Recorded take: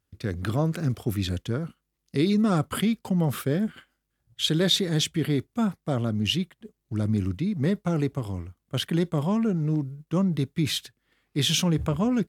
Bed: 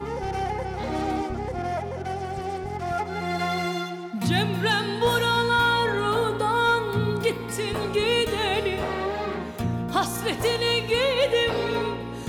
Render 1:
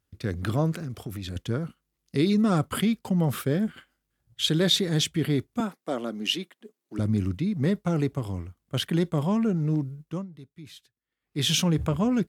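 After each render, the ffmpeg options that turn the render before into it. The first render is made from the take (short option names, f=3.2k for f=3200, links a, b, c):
-filter_complex "[0:a]asettb=1/sr,asplit=3[a][b][c];[a]atrim=end=0.744[d];[b]atrim=start=0.74:end=1.36,asetpts=PTS-STARTPTS,afade=t=in:d=0.004:c=qsin,afade=t=out:st=0.616:d=0.004:c=qsin,acompressor=threshold=-31dB:ratio=5:attack=3.2:release=140:knee=1:detection=peak[e];[c]atrim=start=1.356[f];[d][e]acrossfade=d=0.004:c1=hsin:c2=qsin[g];[g][f]acrossfade=d=0.004:c1=qsin:c2=hsin,asettb=1/sr,asplit=3[h][i][j];[h]atrim=end=5.604[k];[i]atrim=start=5.6:end=6.99,asetpts=PTS-STARTPTS,afade=t=in:d=0.004:c=qsin,afade=t=out:st=1.386:d=0.004:c=qsin,highpass=f=250:w=0.5412,highpass=f=250:w=1.3066[l];[j]atrim=start=6.986[m];[k][l]acrossfade=d=0.004:c1=hsin:c2=qsin[n];[n][m]acrossfade=d=0.004:c1=qsin:c2=hsin,asplit=3[o][p][q];[o]atrim=end=10.27,asetpts=PTS-STARTPTS,afade=t=out:st=9.98:d=0.29:silence=0.105925[r];[p]atrim=start=10.27:end=11.2,asetpts=PTS-STARTPTS,volume=-19.5dB[s];[q]atrim=start=11.2,asetpts=PTS-STARTPTS,afade=t=in:d=0.29:silence=0.105925[t];[r][s][t]concat=n=3:v=0:a=1"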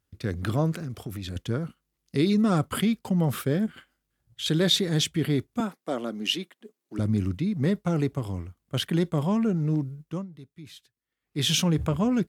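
-filter_complex "[0:a]asettb=1/sr,asplit=3[a][b][c];[a]atrim=end=3.664[d];[b]atrim=start=3.66:end=4.46,asetpts=PTS-STARTPTS,afade=t=in:d=0.004:c=qsin,afade=t=out:st=0.796:d=0.004:c=qsin,acompressor=threshold=-40dB:ratio=1.5:attack=3.2:release=140:knee=1:detection=peak[e];[c]atrim=start=4.456[f];[d][e]acrossfade=d=0.004:c1=hsin:c2=qsin[g];[g][f]acrossfade=d=0.004:c1=qsin:c2=hsin"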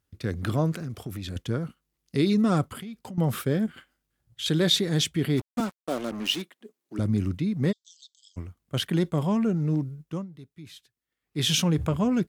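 -filter_complex "[0:a]asettb=1/sr,asplit=3[a][b][c];[a]atrim=end=2.664[d];[b]atrim=start=2.66:end=3.18,asetpts=PTS-STARTPTS,afade=t=in:d=0.004:c=qsin,afade=t=out:st=0.516:d=0.004:c=qsin,acompressor=threshold=-36dB:ratio=6:attack=3.2:release=140:knee=1:detection=peak[e];[c]atrim=start=3.176[f];[d][e]acrossfade=d=0.004:c1=hsin:c2=qsin[g];[g][f]acrossfade=d=0.004:c1=qsin:c2=hsin,asplit=3[h][i][j];[h]afade=t=out:st=5.36:d=0.02[k];[i]acrusher=bits=5:mix=0:aa=0.5,afade=t=in:st=5.36:d=0.02,afade=t=out:st=6.41:d=0.02[l];[j]afade=t=in:st=6.41:d=0.02[m];[k][l][m]amix=inputs=3:normalize=0,asplit=3[n][o][p];[n]afade=t=out:st=7.71:d=0.02[q];[o]asuperpass=centerf=5100:order=20:qfactor=1.1,afade=t=in:st=7.71:d=0.02,afade=t=out:st=8.36:d=0.02[r];[p]afade=t=in:st=8.36:d=0.02[s];[q][r][s]amix=inputs=3:normalize=0"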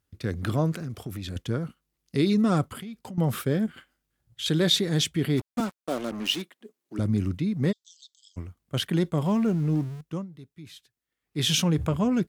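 -filter_complex "[0:a]asettb=1/sr,asplit=3[a][b][c];[a]atrim=end=9.254[d];[b]atrim=start=9.25:end=10.01,asetpts=PTS-STARTPTS,afade=t=in:d=0.004:c=qsin,afade=t=out:st=0.756:d=0.004:c=qsin,aeval=exprs='val(0)+0.5*0.00944*sgn(val(0))':c=same[e];[c]atrim=start=10.006[f];[d][e]acrossfade=d=0.004:c1=hsin:c2=qsin[g];[g][f]acrossfade=d=0.004:c1=qsin:c2=hsin"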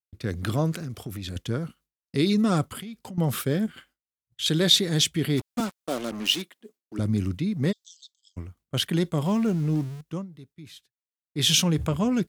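-af "agate=range=-33dB:threshold=-50dB:ratio=3:detection=peak,adynamicequalizer=threshold=0.00708:dfrequency=2400:dqfactor=0.7:tfrequency=2400:tqfactor=0.7:attack=5:release=100:ratio=0.375:range=2.5:mode=boostabove:tftype=highshelf"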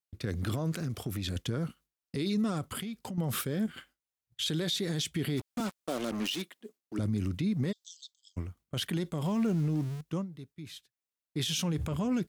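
-af "acompressor=threshold=-24dB:ratio=6,alimiter=limit=-23dB:level=0:latency=1:release=33"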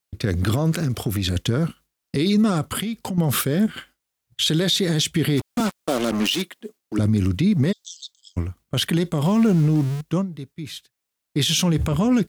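-af "volume=11.5dB"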